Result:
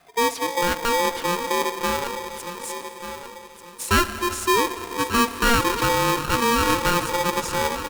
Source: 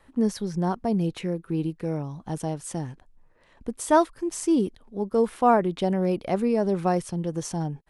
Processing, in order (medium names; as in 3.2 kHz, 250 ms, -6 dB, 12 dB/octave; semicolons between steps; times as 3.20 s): 2.07–3.91 s: steep high-pass 1.9 kHz; in parallel at -1.5 dB: level held to a coarse grid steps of 14 dB; on the sum: saturation -10 dBFS, distortion -20 dB; feedback delay 1190 ms, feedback 31%, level -11 dB; reverberation RT60 4.3 s, pre-delay 46 ms, DRR 10 dB; polarity switched at an audio rate 700 Hz